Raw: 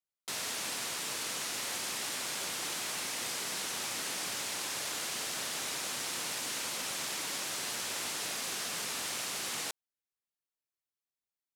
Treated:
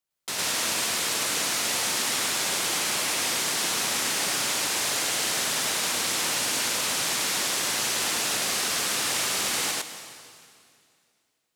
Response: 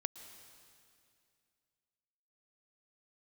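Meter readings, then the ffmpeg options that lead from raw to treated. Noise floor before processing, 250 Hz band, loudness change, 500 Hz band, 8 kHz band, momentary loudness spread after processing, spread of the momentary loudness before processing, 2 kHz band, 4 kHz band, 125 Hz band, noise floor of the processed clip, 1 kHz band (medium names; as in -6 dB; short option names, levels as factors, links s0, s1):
under -85 dBFS, +10.5 dB, +10.0 dB, +10.5 dB, +10.5 dB, 1 LU, 0 LU, +10.5 dB, +10.5 dB, +10.0 dB, -73 dBFS, +10.5 dB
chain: -filter_complex "[0:a]asplit=2[s0][s1];[1:a]atrim=start_sample=2205,adelay=107[s2];[s1][s2]afir=irnorm=-1:irlink=0,volume=1.33[s3];[s0][s3]amix=inputs=2:normalize=0,volume=2.11"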